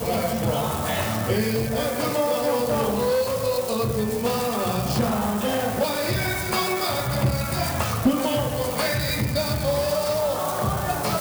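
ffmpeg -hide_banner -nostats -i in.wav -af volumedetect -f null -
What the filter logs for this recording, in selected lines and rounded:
mean_volume: -23.6 dB
max_volume: -11.1 dB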